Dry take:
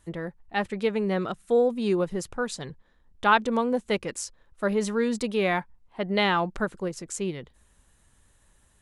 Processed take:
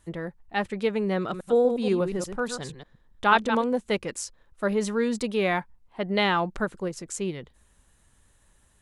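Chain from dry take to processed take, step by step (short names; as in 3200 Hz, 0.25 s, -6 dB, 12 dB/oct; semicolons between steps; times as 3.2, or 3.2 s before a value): 1.17–3.64 reverse delay 0.119 s, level -8 dB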